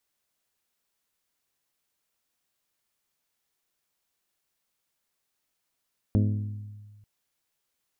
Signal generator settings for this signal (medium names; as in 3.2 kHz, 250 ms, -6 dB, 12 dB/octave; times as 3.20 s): glass hit bell, lowest mode 104 Hz, modes 7, decay 1.61 s, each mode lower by 4 dB, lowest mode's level -19 dB